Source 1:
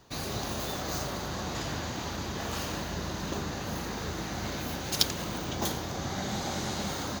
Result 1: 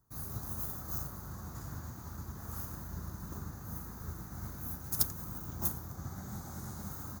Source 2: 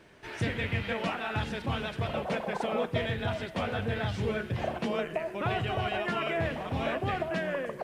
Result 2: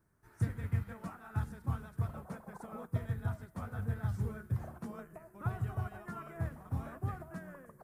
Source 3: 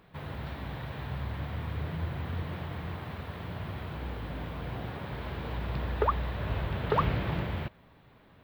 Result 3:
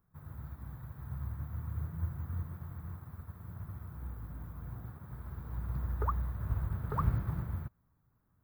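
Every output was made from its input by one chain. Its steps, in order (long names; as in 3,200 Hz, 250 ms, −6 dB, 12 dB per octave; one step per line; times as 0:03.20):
drawn EQ curve 110 Hz 0 dB, 570 Hz −16 dB, 1,300 Hz −6 dB, 2,900 Hz −28 dB, 12,000 Hz +6 dB
expander for the loud parts 1.5 to 1, over −52 dBFS
level +2 dB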